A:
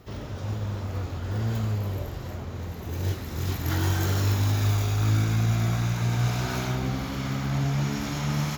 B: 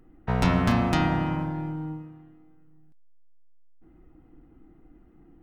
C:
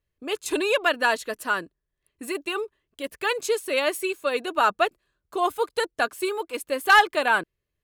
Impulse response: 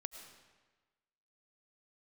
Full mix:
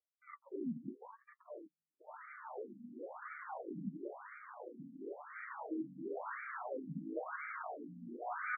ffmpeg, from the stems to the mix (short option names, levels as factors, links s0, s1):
-filter_complex "[0:a]highpass=490,adelay=2000,volume=1.19[s0];[2:a]acrusher=samples=38:mix=1:aa=0.000001:lfo=1:lforange=60.8:lforate=0.28,acompressor=threshold=0.0708:ratio=6,volume=0.266[s1];[s0][s1]amix=inputs=2:normalize=0,equalizer=f=190:w=0.62:g=6,flanger=delay=6.2:depth=2.1:regen=46:speed=0.54:shape=sinusoidal,afftfilt=real='re*between(b*sr/1024,200*pow(1700/200,0.5+0.5*sin(2*PI*0.97*pts/sr))/1.41,200*pow(1700/200,0.5+0.5*sin(2*PI*0.97*pts/sr))*1.41)':imag='im*between(b*sr/1024,200*pow(1700/200,0.5+0.5*sin(2*PI*0.97*pts/sr))/1.41,200*pow(1700/200,0.5+0.5*sin(2*PI*0.97*pts/sr))*1.41)':win_size=1024:overlap=0.75"